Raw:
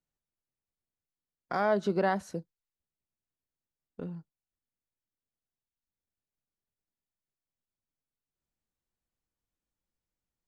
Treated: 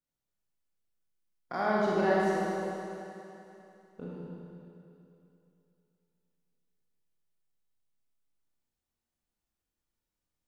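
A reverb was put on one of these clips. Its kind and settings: Schroeder reverb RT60 2.9 s, combs from 26 ms, DRR -6 dB; gain -5 dB

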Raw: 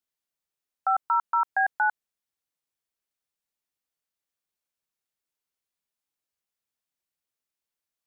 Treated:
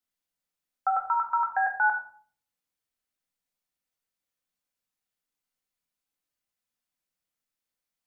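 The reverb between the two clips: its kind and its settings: shoebox room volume 530 m³, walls furnished, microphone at 2 m; gain -2 dB

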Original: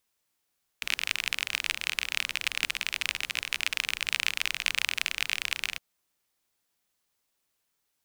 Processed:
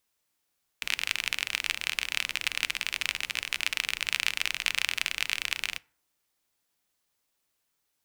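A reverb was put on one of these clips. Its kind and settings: FDN reverb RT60 0.52 s, low-frequency decay 1×, high-frequency decay 0.5×, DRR 18 dB

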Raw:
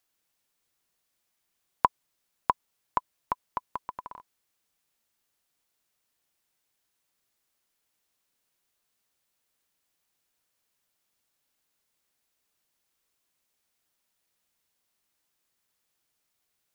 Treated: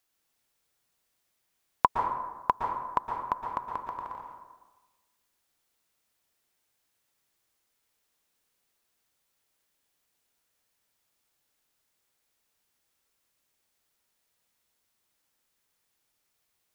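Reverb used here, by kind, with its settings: plate-style reverb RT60 1.2 s, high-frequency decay 0.5×, pre-delay 0.105 s, DRR 2 dB

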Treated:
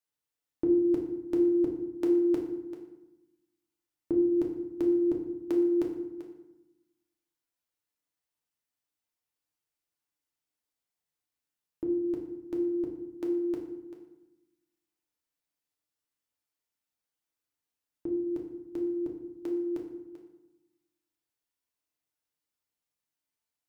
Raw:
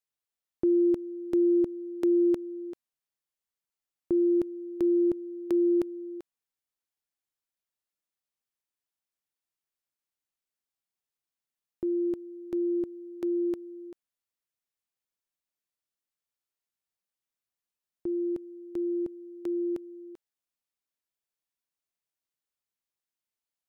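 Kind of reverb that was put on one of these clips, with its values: FDN reverb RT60 0.91 s, low-frequency decay 1.45×, high-frequency decay 0.65×, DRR -0.5 dB; gain -1.5 dB

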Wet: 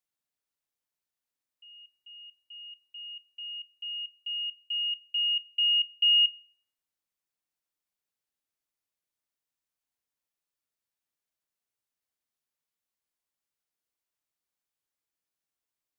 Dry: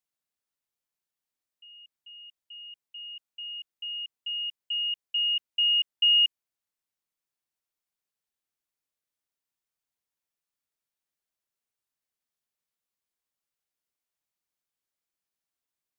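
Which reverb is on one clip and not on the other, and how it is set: FDN reverb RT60 1.9 s, high-frequency decay 0.25×, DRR 13 dB; gain -1.5 dB

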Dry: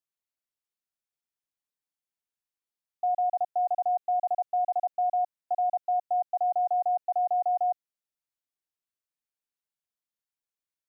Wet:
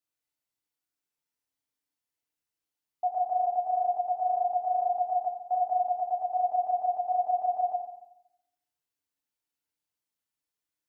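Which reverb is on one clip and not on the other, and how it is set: FDN reverb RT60 0.82 s, low-frequency decay 1.4×, high-frequency decay 0.95×, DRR -2.5 dB; gain -1.5 dB

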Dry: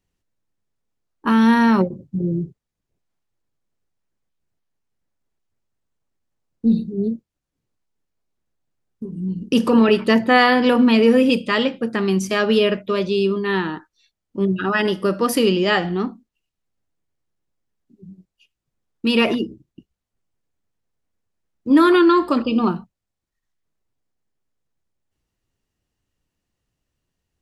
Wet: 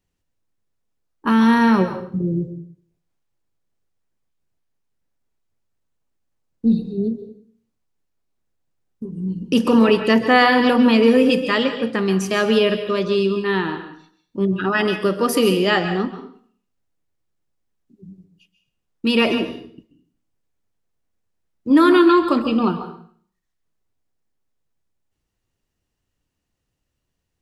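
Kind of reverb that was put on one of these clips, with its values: plate-style reverb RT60 0.52 s, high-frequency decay 0.95×, pre-delay 0.12 s, DRR 8.5 dB

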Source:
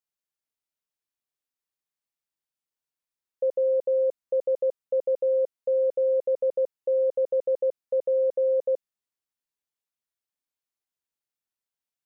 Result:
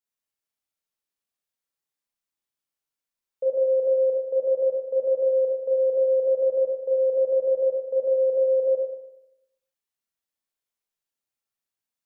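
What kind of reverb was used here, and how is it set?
Schroeder reverb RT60 0.84 s, combs from 28 ms, DRR -2 dB; gain -2.5 dB

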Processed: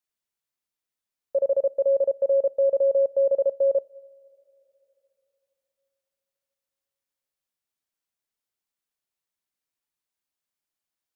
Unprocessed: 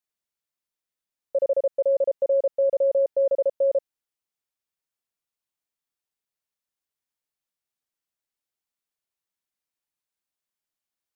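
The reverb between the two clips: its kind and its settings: two-slope reverb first 0.33 s, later 3.5 s, from -18 dB, DRR 20 dB

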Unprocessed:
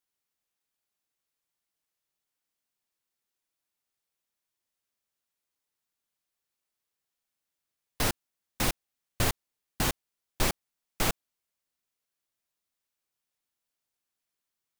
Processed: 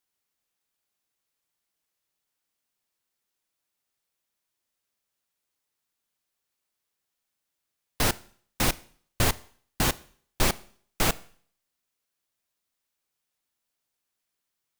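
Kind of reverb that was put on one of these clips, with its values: Schroeder reverb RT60 0.52 s, combs from 25 ms, DRR 19 dB; gain +3.5 dB

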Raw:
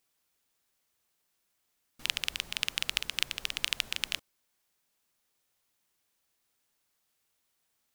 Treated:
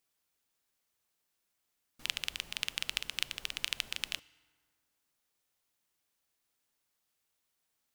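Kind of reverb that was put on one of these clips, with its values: FDN reverb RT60 1.9 s, low-frequency decay 1.05×, high-frequency decay 0.55×, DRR 19.5 dB; gain -4 dB

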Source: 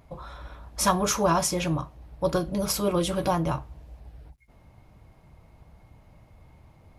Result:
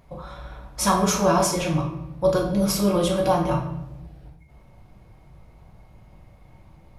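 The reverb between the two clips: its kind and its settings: shoebox room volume 320 m³, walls mixed, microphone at 1 m

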